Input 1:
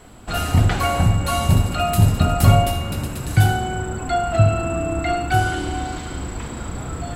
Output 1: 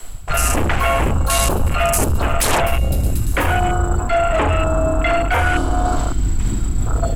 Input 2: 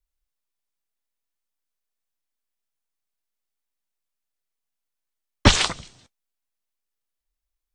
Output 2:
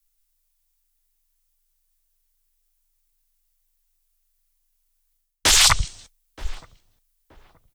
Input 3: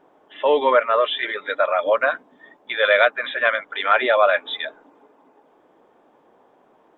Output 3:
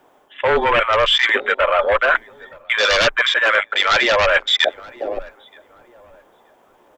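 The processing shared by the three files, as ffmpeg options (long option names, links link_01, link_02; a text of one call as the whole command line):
ffmpeg -i in.wav -filter_complex "[0:a]crystalizer=i=2.5:c=0,lowshelf=frequency=440:gain=5.5,aeval=exprs='1.58*sin(PI/2*5.62*val(0)/1.58)':channel_layout=same,equalizer=frequency=230:width=0.54:gain=-10.5,asplit=2[link_01][link_02];[link_02]adelay=925,lowpass=frequency=940:poles=1,volume=-15.5dB,asplit=2[link_03][link_04];[link_04]adelay=925,lowpass=frequency=940:poles=1,volume=0.39,asplit=2[link_05][link_06];[link_06]adelay=925,lowpass=frequency=940:poles=1,volume=0.39[link_07];[link_03][link_05][link_07]amix=inputs=3:normalize=0[link_08];[link_01][link_08]amix=inputs=2:normalize=0,afwtdn=0.316,afreqshift=-22,areverse,acompressor=threshold=-16dB:ratio=5,areverse,volume=1.5dB" out.wav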